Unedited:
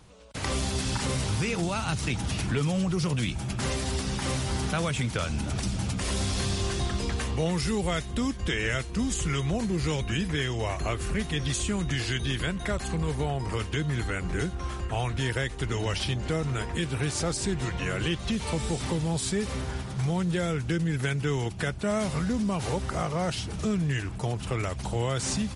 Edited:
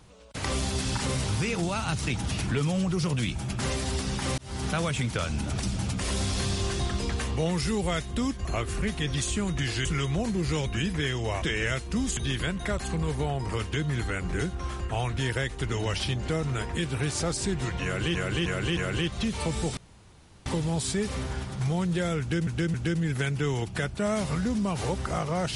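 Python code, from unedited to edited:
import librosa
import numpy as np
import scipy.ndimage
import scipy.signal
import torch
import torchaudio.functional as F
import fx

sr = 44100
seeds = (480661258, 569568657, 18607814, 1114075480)

y = fx.edit(x, sr, fx.fade_in_span(start_s=4.38, length_s=0.31),
    fx.swap(start_s=8.45, length_s=0.75, other_s=10.77, other_length_s=1.4),
    fx.repeat(start_s=17.84, length_s=0.31, count=4),
    fx.insert_room_tone(at_s=18.84, length_s=0.69),
    fx.repeat(start_s=20.58, length_s=0.27, count=3), tone=tone)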